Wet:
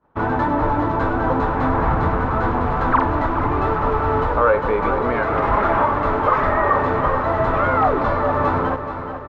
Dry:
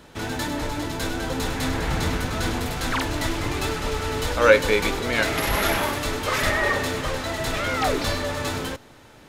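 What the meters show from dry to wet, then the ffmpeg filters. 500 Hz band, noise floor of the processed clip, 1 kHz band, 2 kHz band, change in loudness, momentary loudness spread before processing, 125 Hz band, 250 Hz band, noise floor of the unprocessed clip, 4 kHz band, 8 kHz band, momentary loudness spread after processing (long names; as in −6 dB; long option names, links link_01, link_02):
+4.5 dB, −28 dBFS, +10.5 dB, −0.5 dB, +5.0 dB, 7 LU, +5.5 dB, +5.5 dB, −49 dBFS, below −10 dB, below −25 dB, 3 LU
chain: -filter_complex "[0:a]acontrast=88,alimiter=limit=-10.5dB:level=0:latency=1:release=415,agate=range=-33dB:threshold=-27dB:ratio=3:detection=peak,lowpass=frequency=1100:width_type=q:width=2.7,asplit=2[link_01][link_02];[link_02]aecho=0:1:428|856|1284|1712|2140|2568:0.316|0.177|0.0992|0.0555|0.0311|0.0174[link_03];[link_01][link_03]amix=inputs=2:normalize=0"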